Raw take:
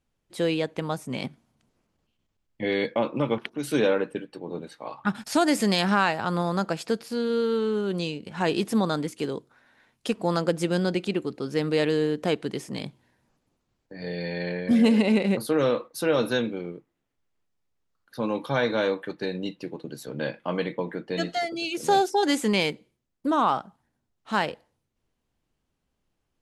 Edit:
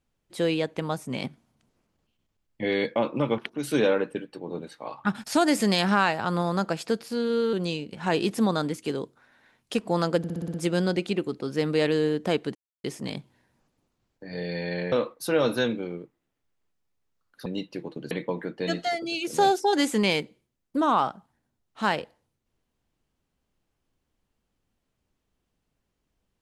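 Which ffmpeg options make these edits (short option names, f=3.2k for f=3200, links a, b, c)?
-filter_complex "[0:a]asplit=12[a][b][c][d][e][f][g][h][i][j][k][l];[a]atrim=end=7.532[m];[b]atrim=start=7.868:end=10.582[n];[c]atrim=start=10.518:end=10.582[o];[d]atrim=start=10.518:end=10.582[p];[e]atrim=start=10.518:end=10.582[q];[f]atrim=start=10.518:end=10.582[r];[g]atrim=start=10.518:end=10.582[s];[h]atrim=start=10.518:end=12.53,asetpts=PTS-STARTPTS,afade=t=out:st=2.008:d=0.004:c=hsin,apad=pad_dur=0.29[t];[i]atrim=start=12.53:end=14.612,asetpts=PTS-STARTPTS,afade=t=in:d=0.004:c=hsin[u];[j]atrim=start=15.658:end=18.202[v];[k]atrim=start=19.338:end=19.992[w];[l]atrim=start=20.608[x];[m][n]acrossfade=d=0.004:c1=hsin:c2=hsin[y];[y][o]acrossfade=d=0.004:c1=hsin:c2=hsin[z];[z][p]acrossfade=d=0.004:c1=hsin:c2=hsin[aa];[aa][q]acrossfade=d=0.004:c1=hsin:c2=hsin[ab];[ab][r]acrossfade=d=0.004:c1=hsin:c2=hsin[ac];[ac][s]acrossfade=d=0.004:c1=hsin:c2=hsin[ad];[t][u]concat=n=2:v=0:a=1[ae];[ad][ae]acrossfade=d=0.004:c1=hsin:c2=hsin[af];[af][v]acrossfade=d=0.004:c1=hsin:c2=hsin[ag];[ag][w]acrossfade=d=0.004:c1=hsin:c2=hsin[ah];[ah][x]acrossfade=d=0.004:c1=hsin:c2=hsin"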